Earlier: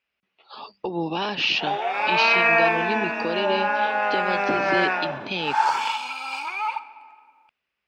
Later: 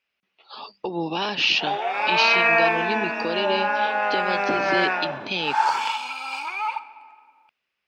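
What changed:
speech: add treble shelf 4.3 kHz +7 dB; master: add bass shelf 77 Hz -8 dB

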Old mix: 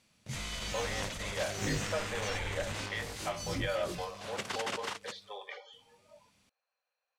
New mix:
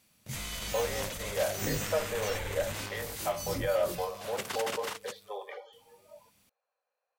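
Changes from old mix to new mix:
speech: add tilt shelf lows +8.5 dB, about 1.5 kHz; master: remove low-pass 7.2 kHz 12 dB/octave

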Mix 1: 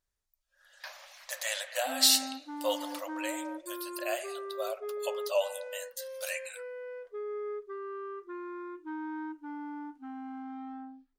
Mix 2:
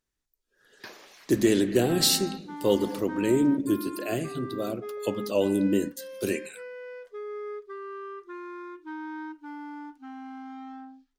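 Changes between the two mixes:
speech: remove brick-wall FIR high-pass 520 Hz; background: remove low-pass 1.3 kHz 6 dB/octave

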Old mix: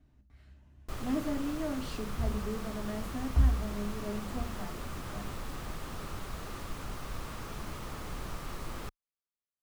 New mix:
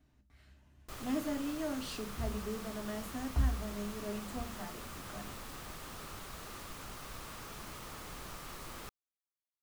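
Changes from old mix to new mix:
background -4.0 dB; master: add tilt EQ +1.5 dB/octave

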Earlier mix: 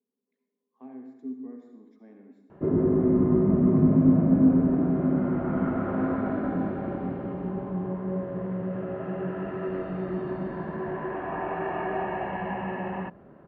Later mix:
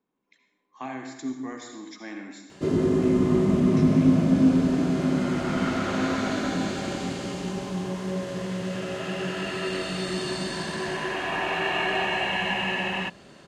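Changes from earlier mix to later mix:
speech: remove two resonant band-passes 320 Hz, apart 0.77 oct; background: remove Bessel low-pass 1 kHz, order 4

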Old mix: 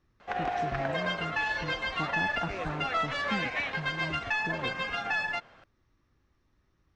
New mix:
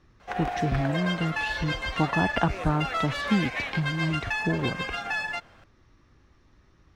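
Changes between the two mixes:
speech +11.5 dB; background: remove boxcar filter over 4 samples

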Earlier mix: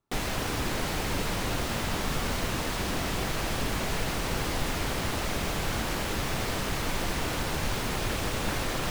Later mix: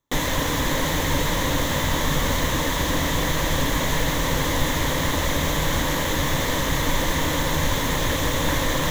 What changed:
background +6.5 dB; master: add rippled EQ curve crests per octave 1.1, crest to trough 9 dB

